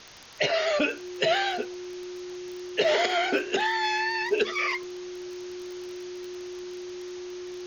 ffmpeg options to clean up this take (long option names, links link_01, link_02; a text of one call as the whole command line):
ffmpeg -i in.wav -af "adeclick=threshold=4,bandreject=frequency=360:width=30,afwtdn=0.0063" out.wav